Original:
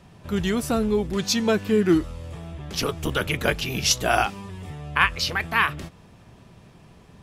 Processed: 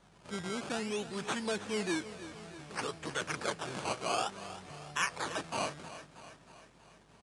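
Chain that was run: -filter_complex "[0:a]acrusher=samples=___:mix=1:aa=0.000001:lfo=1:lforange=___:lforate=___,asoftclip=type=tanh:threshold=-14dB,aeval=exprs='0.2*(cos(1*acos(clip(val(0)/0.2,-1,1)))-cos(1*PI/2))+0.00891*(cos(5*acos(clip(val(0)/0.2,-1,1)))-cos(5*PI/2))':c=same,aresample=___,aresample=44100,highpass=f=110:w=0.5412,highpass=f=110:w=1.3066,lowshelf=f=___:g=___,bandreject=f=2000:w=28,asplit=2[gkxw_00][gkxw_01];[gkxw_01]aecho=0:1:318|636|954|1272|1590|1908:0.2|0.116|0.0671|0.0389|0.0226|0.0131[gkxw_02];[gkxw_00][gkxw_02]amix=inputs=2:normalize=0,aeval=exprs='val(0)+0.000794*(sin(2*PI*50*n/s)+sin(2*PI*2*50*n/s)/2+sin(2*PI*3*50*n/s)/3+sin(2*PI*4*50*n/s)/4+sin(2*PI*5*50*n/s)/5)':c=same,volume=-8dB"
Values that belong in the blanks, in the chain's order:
17, 17, 0.57, 22050, 400, -9.5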